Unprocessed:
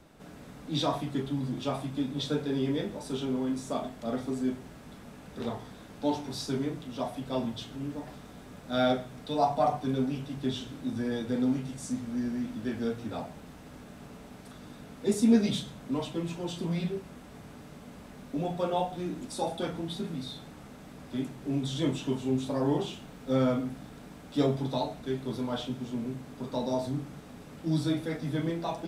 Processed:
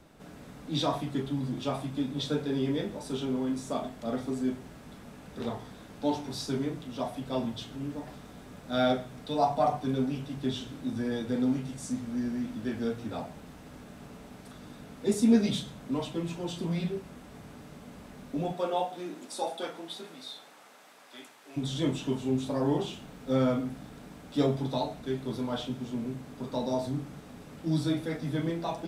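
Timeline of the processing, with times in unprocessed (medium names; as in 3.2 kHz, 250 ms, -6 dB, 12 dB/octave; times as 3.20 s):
18.52–21.56 s: high-pass 260 Hz -> 990 Hz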